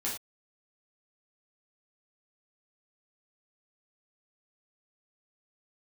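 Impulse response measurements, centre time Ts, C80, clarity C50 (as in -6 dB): 31 ms, 10.5 dB, 5.0 dB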